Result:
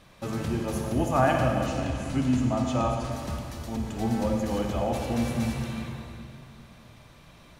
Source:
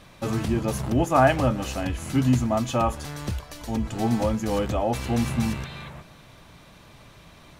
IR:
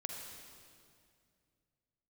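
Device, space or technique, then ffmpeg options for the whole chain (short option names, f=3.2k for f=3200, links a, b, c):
stairwell: -filter_complex "[1:a]atrim=start_sample=2205[a];[0:a][a]afir=irnorm=-1:irlink=0,asettb=1/sr,asplit=3[b][c][d];[b]atrim=end=1.664[e];[c]atrim=start=1.66:end=3.12,asetpts=PTS-STARTPTS,afade=t=in:d=0.004:c=qsin,afade=t=out:st=1.456:d=0.004:c=qsin,equalizer=f=13k:w=1.7:g=-15[f];[d]atrim=start=3.116[g];[e][f]acrossfade=d=0.004:c1=hsin:c2=qsin[h];[h][g]acrossfade=d=0.004:c1=qsin:c2=hsin,volume=-2.5dB"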